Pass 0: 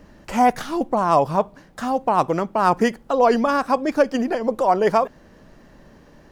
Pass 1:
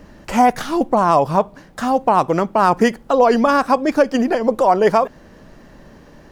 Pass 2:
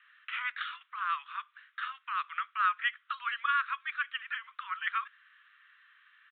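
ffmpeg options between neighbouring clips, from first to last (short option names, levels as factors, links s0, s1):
-af "alimiter=limit=0.376:level=0:latency=1:release=184,volume=1.78"
-af "asuperpass=centerf=2700:order=20:qfactor=0.58,aresample=8000,aresample=44100,volume=0.501"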